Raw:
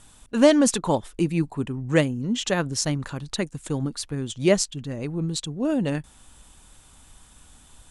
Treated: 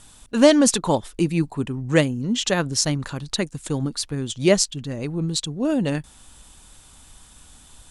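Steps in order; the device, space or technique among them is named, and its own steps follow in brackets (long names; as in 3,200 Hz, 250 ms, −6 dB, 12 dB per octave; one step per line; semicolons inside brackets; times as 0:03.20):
presence and air boost (parametric band 4,500 Hz +3.5 dB 0.98 octaves; high-shelf EQ 9,700 Hz +3.5 dB)
level +2 dB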